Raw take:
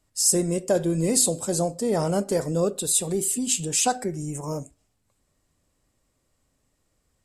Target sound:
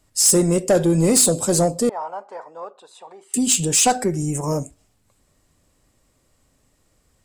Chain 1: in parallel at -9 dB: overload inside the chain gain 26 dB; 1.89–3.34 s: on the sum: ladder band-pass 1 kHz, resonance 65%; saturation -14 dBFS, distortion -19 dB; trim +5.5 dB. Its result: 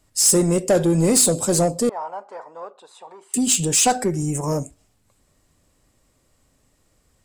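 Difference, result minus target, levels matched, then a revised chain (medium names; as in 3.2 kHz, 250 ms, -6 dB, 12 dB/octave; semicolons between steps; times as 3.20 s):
overload inside the chain: distortion +11 dB
in parallel at -9 dB: overload inside the chain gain 16.5 dB; 1.89–3.34 s: on the sum: ladder band-pass 1 kHz, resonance 65%; saturation -14 dBFS, distortion -17 dB; trim +5.5 dB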